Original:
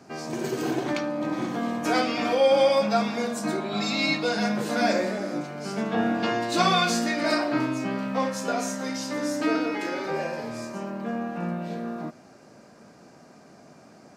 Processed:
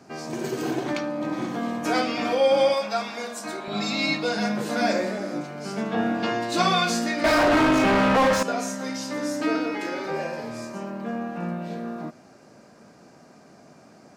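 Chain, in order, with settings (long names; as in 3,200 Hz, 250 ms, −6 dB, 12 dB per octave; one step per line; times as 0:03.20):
0:02.74–0:03.68: high-pass filter 720 Hz 6 dB per octave
0:07.24–0:08.43: mid-hump overdrive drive 34 dB, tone 1,600 Hz, clips at −11 dBFS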